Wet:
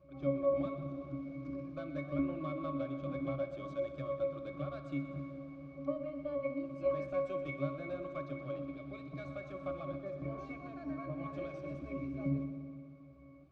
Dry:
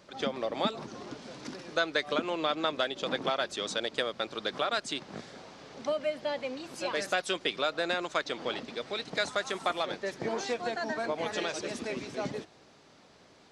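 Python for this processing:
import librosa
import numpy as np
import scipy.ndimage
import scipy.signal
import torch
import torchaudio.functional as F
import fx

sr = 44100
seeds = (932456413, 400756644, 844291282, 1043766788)

p1 = fx.low_shelf(x, sr, hz=190.0, db=7.0)
p2 = fx.tube_stage(p1, sr, drive_db=25.0, bias=0.45)
p3 = fx.octave_resonator(p2, sr, note='C#', decay_s=0.43)
p4 = p3 + fx.echo_heads(p3, sr, ms=62, heads='first and second', feedback_pct=75, wet_db=-15.0, dry=0)
y = p4 * librosa.db_to_amplitude(13.5)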